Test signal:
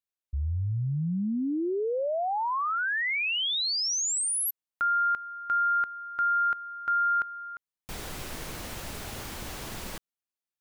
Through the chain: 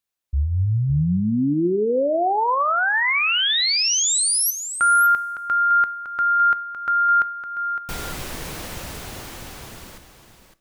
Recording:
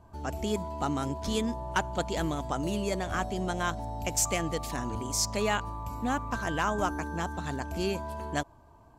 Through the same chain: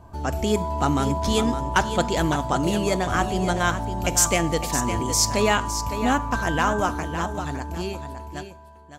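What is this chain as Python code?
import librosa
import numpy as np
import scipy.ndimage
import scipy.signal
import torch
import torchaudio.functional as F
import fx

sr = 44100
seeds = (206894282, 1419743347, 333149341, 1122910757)

p1 = fx.fade_out_tail(x, sr, length_s=2.82)
p2 = p1 + fx.echo_single(p1, sr, ms=559, db=-9.5, dry=0)
p3 = fx.rev_double_slope(p2, sr, seeds[0], early_s=0.41, late_s=2.3, knee_db=-19, drr_db=14.5)
y = p3 * 10.0 ** (8.0 / 20.0)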